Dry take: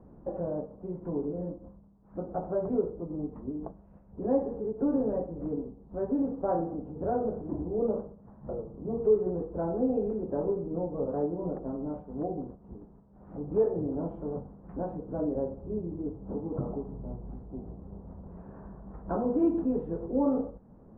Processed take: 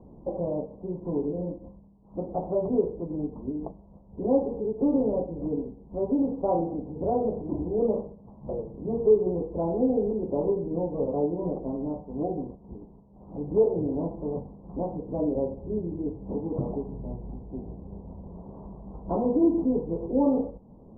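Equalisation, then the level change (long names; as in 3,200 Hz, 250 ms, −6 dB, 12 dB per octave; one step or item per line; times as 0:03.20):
elliptic low-pass filter 1,000 Hz, stop band 60 dB
+4.0 dB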